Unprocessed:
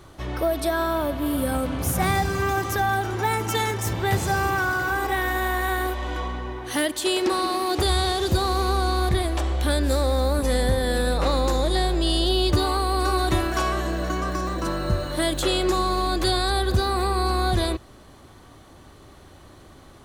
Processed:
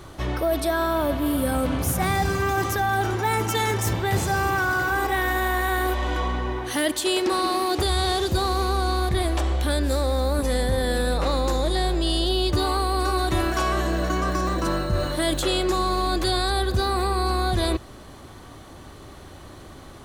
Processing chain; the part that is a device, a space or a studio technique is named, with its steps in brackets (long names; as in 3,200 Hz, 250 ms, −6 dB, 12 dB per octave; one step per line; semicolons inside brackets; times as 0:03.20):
compression on the reversed sound (reversed playback; downward compressor 4 to 1, threshold −25 dBFS, peak gain reduction 8.5 dB; reversed playback)
level +5 dB